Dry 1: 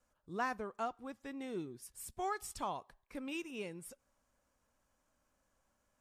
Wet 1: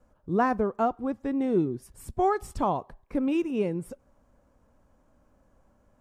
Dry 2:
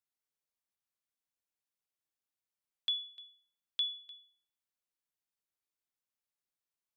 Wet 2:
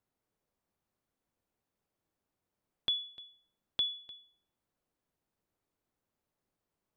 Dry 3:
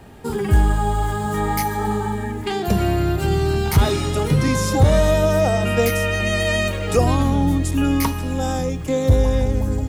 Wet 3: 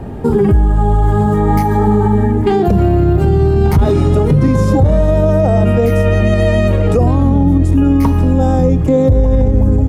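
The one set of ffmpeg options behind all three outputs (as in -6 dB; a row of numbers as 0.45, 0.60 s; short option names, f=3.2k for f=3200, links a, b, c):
-filter_complex "[0:a]tiltshelf=f=1.3k:g=10,asplit=2[a][b];[b]acompressor=threshold=-21dB:ratio=6,volume=3dB[c];[a][c]amix=inputs=2:normalize=0,alimiter=level_in=3.5dB:limit=-1dB:release=50:level=0:latency=1,volume=-2.5dB"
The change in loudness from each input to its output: +14.0, +1.5, +7.5 LU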